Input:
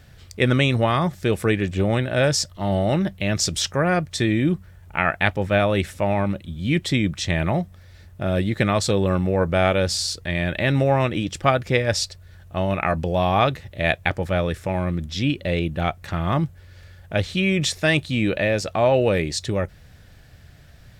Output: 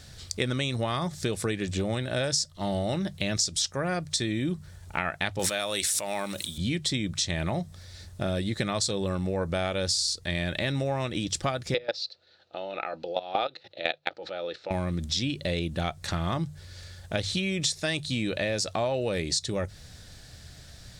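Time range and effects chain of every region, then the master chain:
0:05.39–0:06.58: RIAA equalisation recording + background raised ahead of every attack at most 22 dB per second
0:11.74–0:14.71: notch filter 1,100 Hz, Q 5.9 + output level in coarse steps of 19 dB + loudspeaker in its box 310–4,700 Hz, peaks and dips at 330 Hz +7 dB, 510 Hz +10 dB, 780 Hz +7 dB, 1,300 Hz +8 dB, 2,700 Hz +6 dB, 4,100 Hz +9 dB
whole clip: flat-topped bell 6,000 Hz +10.5 dB; mains-hum notches 50/100/150 Hz; downward compressor 5 to 1, threshold −26 dBFS

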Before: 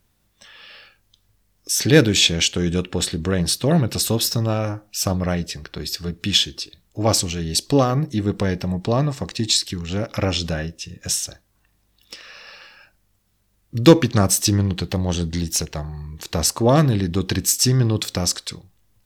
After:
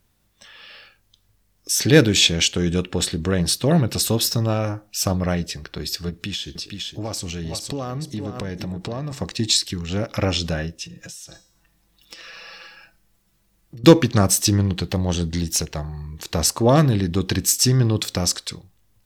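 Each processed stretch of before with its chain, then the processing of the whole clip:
0:06.09–0:09.13: single-tap delay 462 ms −11 dB + downward compressor, threshold −25 dBFS
0:10.84–0:13.84: comb filter 6 ms, depth 78% + hum removal 256.7 Hz, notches 32 + downward compressor 10 to 1, threshold −35 dBFS
whole clip: no processing

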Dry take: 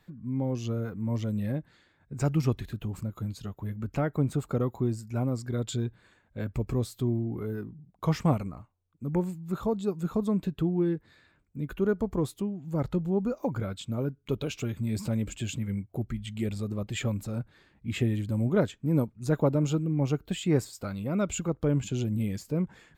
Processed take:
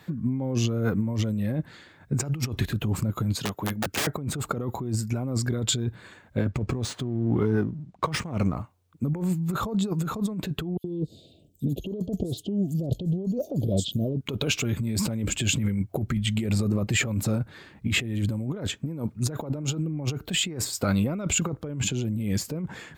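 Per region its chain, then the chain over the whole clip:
0:03.35–0:04.07: high-pass filter 330 Hz 6 dB per octave + wrap-around overflow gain 33.5 dB + multiband upward and downward compressor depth 40%
0:06.38–0:08.56: gain on one half-wave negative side −3 dB + linearly interpolated sample-rate reduction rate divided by 3×
0:10.77–0:14.21: Chebyshev band-stop filter 680–3,000 Hz, order 4 + multiband delay without the direct sound highs, lows 70 ms, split 4,400 Hz
0:16.44–0:17.07: high-pass filter 48 Hz + parametric band 3,400 Hz −8 dB 0.23 octaves
whole clip: high-pass filter 76 Hz; compressor whose output falls as the input rises −35 dBFS, ratio −1; level +8 dB

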